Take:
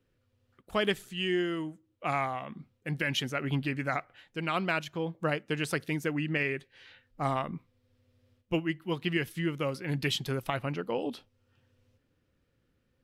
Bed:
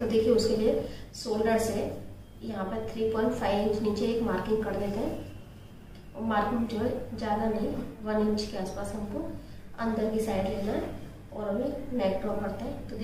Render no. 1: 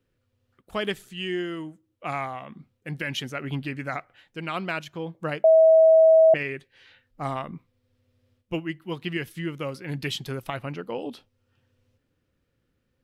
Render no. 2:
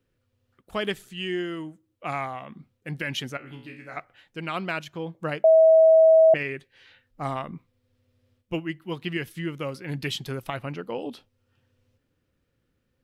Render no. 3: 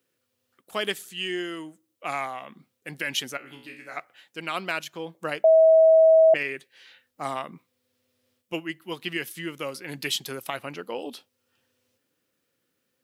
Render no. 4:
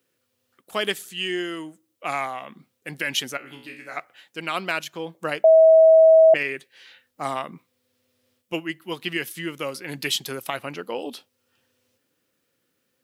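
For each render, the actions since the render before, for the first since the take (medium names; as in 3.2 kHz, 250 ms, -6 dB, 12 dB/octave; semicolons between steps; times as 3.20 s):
5.44–6.34 s: bleep 644 Hz -11.5 dBFS
3.37–3.97 s: feedback comb 61 Hz, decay 0.51 s, mix 90%
Bessel high-pass 300 Hz, order 2; treble shelf 4.7 kHz +11.5 dB
trim +3 dB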